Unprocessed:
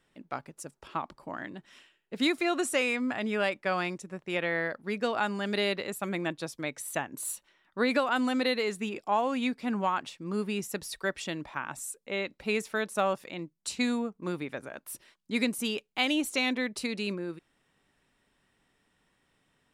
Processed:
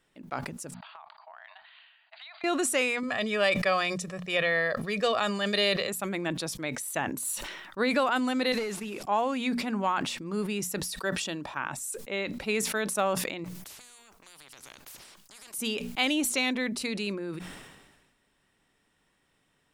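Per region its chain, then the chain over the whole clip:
0:00.74–0:02.44: linear-phase brick-wall band-pass 620–4,800 Hz + downward compressor 16 to 1, threshold −44 dBFS
0:03.03–0:05.89: parametric band 4,200 Hz +5.5 dB 1.6 octaves + comb filter 1.7 ms
0:08.52–0:09.03: linear delta modulator 64 kbit/s, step −47 dBFS + downward compressor, threshold −32 dBFS
0:10.91–0:11.57: low-shelf EQ 67 Hz −11 dB + notch filter 2,100 Hz, Q 5.5
0:13.44–0:15.54: downward compressor, threshold −38 dBFS + every bin compressed towards the loudest bin 10 to 1
whole clip: parametric band 13,000 Hz +2.5 dB 2.1 octaves; mains-hum notches 60/120/180/240 Hz; level that may fall only so fast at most 43 dB per second

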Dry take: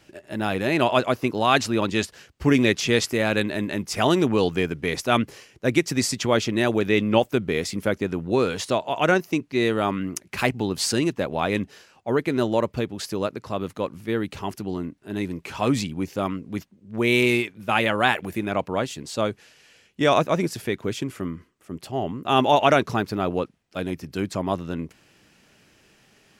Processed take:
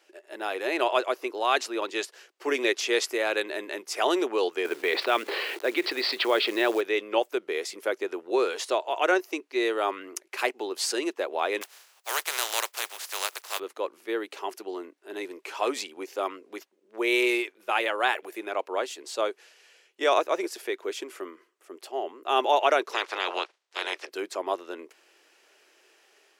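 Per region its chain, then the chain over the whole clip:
0:04.65–0:06.81: elliptic low-pass filter 4,300 Hz + log-companded quantiser 6 bits + envelope flattener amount 70%
0:11.61–0:13.58: compressing power law on the bin magnitudes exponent 0.31 + high-pass filter 660 Hz
0:22.92–0:24.08: ceiling on every frequency bin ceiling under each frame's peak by 29 dB + band-pass filter 120–5,600 Hz
whole clip: automatic gain control gain up to 3.5 dB; elliptic high-pass filter 360 Hz, stop band 80 dB; level −5 dB

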